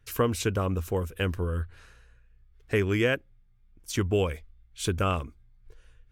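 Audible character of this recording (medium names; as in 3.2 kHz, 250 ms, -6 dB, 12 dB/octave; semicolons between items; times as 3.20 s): noise floor -60 dBFS; spectral tilt -5.5 dB/octave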